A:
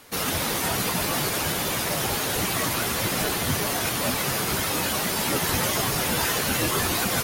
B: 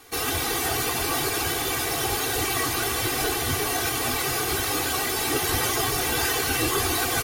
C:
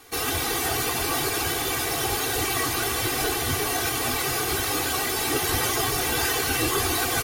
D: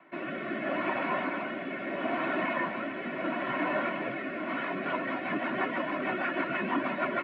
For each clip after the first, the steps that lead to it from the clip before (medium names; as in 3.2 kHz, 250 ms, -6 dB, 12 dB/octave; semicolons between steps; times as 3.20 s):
comb 2.6 ms, depth 93%; trim -2.5 dB
no audible change
mistuned SSB -120 Hz 360–2500 Hz; rotary cabinet horn 0.75 Hz, later 6.3 Hz, at 4.30 s